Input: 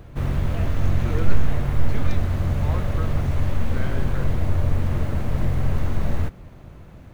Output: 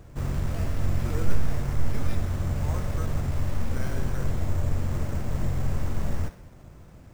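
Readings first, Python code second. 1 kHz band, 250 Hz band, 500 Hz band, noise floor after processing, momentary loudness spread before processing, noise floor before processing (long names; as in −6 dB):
−5.0 dB, −5.0 dB, −5.0 dB, −48 dBFS, 5 LU, −44 dBFS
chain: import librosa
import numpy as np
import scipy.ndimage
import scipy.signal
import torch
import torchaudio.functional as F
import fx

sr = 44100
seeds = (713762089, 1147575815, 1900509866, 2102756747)

y = fx.echo_thinned(x, sr, ms=62, feedback_pct=52, hz=420.0, wet_db=-11.5)
y = np.repeat(y[::6], 6)[:len(y)]
y = y * librosa.db_to_amplitude(-5.0)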